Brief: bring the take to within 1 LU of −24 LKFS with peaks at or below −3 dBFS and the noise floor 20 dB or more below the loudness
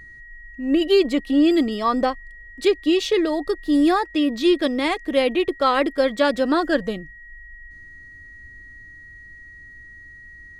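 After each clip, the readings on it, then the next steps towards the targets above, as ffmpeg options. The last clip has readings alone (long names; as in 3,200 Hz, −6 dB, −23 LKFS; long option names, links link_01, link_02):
interfering tone 1,900 Hz; level of the tone −41 dBFS; integrated loudness −20.5 LKFS; sample peak −6.0 dBFS; target loudness −24.0 LKFS
→ -af "bandreject=frequency=1900:width=30"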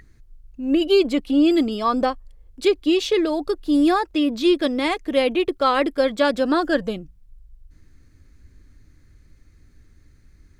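interfering tone none found; integrated loudness −20.5 LKFS; sample peak −6.0 dBFS; target loudness −24.0 LKFS
→ -af "volume=-3.5dB"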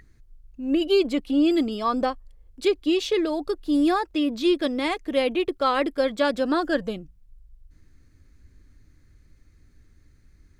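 integrated loudness −24.0 LKFS; sample peak −9.5 dBFS; background noise floor −57 dBFS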